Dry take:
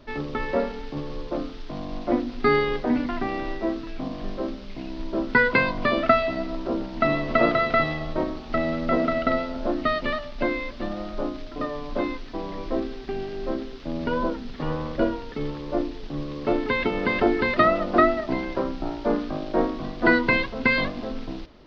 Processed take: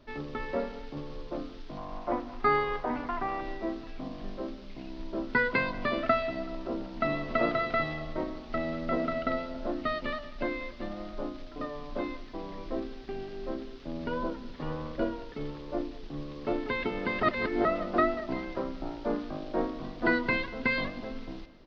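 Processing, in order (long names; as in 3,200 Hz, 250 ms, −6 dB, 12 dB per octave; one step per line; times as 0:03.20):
0:01.77–0:03.41: graphic EQ with 10 bands 250 Hz −6 dB, 1,000 Hz +10 dB, 4,000 Hz −4 dB
0:17.23–0:17.65: reverse
repeating echo 190 ms, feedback 51%, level −19.5 dB
level −7.5 dB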